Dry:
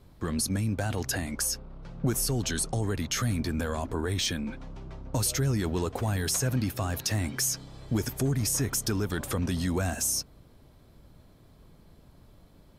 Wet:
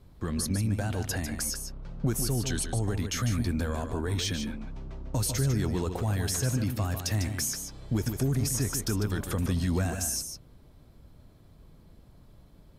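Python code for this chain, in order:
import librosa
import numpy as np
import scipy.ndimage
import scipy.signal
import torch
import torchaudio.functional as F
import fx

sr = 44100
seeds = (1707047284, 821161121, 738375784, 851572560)

p1 = fx.low_shelf(x, sr, hz=180.0, db=5.0)
p2 = p1 + fx.echo_single(p1, sr, ms=149, db=-7.5, dry=0)
y = p2 * 10.0 ** (-3.0 / 20.0)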